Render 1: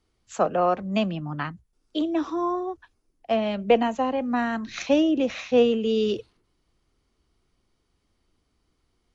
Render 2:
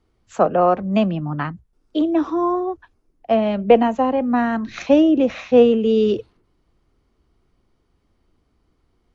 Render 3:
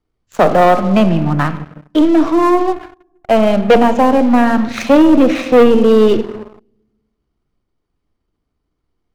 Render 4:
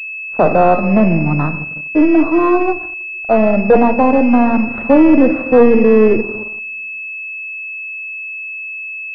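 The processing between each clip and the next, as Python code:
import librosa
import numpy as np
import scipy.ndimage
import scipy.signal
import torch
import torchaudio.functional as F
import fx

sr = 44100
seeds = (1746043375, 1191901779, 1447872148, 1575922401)

y1 = fx.high_shelf(x, sr, hz=2400.0, db=-11.5)
y1 = y1 * 10.0 ** (7.0 / 20.0)
y2 = np.where(y1 < 0.0, 10.0 ** (-3.0 / 20.0) * y1, y1)
y2 = fx.room_shoebox(y2, sr, seeds[0], volume_m3=720.0, walls='mixed', distance_m=0.43)
y2 = fx.leveller(y2, sr, passes=3)
y2 = y2 * 10.0 ** (-1.0 / 20.0)
y3 = fx.cvsd(y2, sr, bps=64000)
y3 = fx.pwm(y3, sr, carrier_hz=2600.0)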